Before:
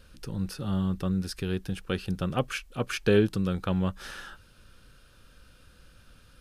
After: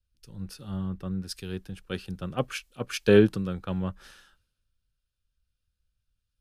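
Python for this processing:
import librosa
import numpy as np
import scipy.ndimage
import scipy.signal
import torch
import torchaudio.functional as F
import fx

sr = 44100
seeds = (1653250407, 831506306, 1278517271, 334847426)

y = fx.band_widen(x, sr, depth_pct=100)
y = y * librosa.db_to_amplitude(-4.5)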